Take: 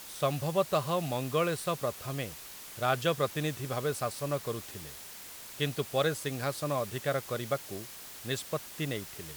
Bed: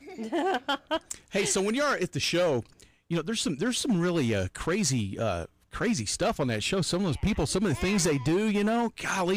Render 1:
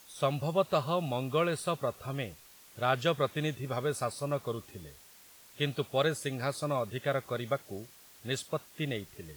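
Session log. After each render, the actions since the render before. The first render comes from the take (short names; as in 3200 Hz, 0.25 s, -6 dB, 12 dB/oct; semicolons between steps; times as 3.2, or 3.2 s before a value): noise print and reduce 10 dB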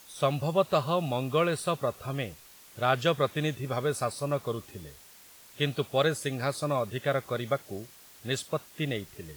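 gain +3 dB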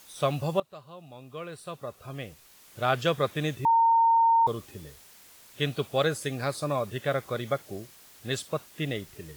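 0.6–2.82 fade in quadratic, from -20.5 dB; 3.65–4.47 bleep 916 Hz -17.5 dBFS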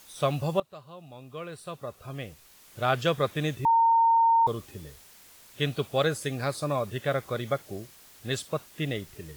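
low shelf 71 Hz +5.5 dB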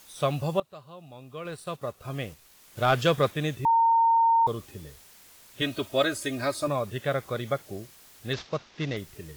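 1.45–3.32 sample leveller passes 1; 5.61–6.68 comb 3.2 ms, depth 79%; 8.33–8.97 CVSD 32 kbps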